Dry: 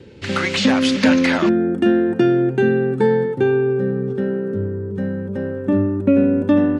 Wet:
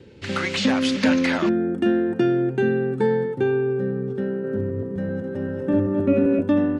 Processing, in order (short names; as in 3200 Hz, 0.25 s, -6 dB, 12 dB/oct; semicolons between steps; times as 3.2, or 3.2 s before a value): 4.31–6.41 regenerating reverse delay 0.13 s, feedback 60%, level -3 dB; gain -4.5 dB